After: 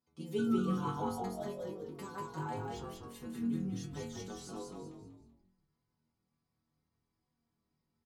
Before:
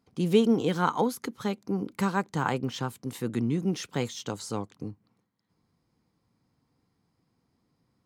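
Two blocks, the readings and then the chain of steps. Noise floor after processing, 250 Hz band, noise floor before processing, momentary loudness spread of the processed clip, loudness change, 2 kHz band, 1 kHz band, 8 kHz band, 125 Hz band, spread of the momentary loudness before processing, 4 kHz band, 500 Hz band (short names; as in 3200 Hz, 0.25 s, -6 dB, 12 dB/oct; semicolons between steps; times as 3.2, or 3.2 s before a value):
-85 dBFS, -8.5 dB, -76 dBFS, 15 LU, -9.5 dB, -14.0 dB, -9.5 dB, -10.5 dB, -9.5 dB, 11 LU, -13.5 dB, -11.0 dB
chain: dynamic EQ 2200 Hz, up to -6 dB, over -46 dBFS, Q 1; painted sound fall, 0.38–1.78, 440–1500 Hz -34 dBFS; metallic resonator 75 Hz, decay 0.74 s, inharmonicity 0.008; on a send: frequency-shifting echo 0.191 s, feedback 34%, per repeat -44 Hz, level -3.5 dB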